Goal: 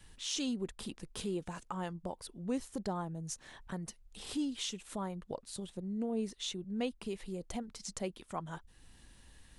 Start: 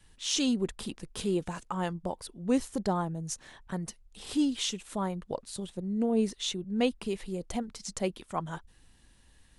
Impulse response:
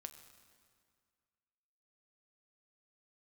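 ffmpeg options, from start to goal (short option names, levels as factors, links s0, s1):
-af "acompressor=threshold=0.00158:ratio=1.5,volume=1.41"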